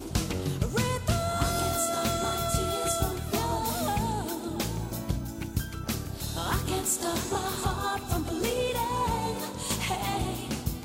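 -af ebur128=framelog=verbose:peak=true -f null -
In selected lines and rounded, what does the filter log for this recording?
Integrated loudness:
  I:         -29.6 LUFS
  Threshold: -39.6 LUFS
Loudness range:
  LRA:         3.2 LU
  Threshold: -49.7 LUFS
  LRA low:   -31.4 LUFS
  LRA high:  -28.1 LUFS
True peak:
  Peak:      -13.9 dBFS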